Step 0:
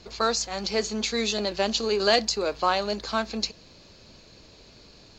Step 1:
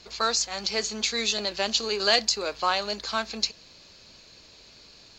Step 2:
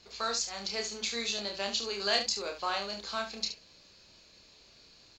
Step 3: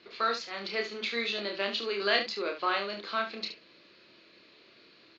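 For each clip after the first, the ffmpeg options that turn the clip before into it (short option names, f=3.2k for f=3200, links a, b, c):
-af "tiltshelf=f=900:g=-5,volume=-2dB"
-af "aecho=1:1:30|72:0.596|0.355,volume=-8.5dB"
-af "highpass=200,equalizer=f=340:t=q:w=4:g=8,equalizer=f=820:t=q:w=4:g=-7,equalizer=f=1.3k:t=q:w=4:g=3,equalizer=f=2k:t=q:w=4:g=4,lowpass=f=3.7k:w=0.5412,lowpass=f=3.7k:w=1.3066,volume=3.5dB"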